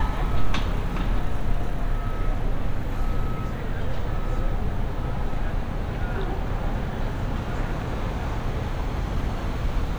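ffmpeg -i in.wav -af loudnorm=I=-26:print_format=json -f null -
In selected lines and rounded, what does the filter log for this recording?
"input_i" : "-29.6",
"input_tp" : "-8.6",
"input_lra" : "0.9",
"input_thresh" : "-39.6",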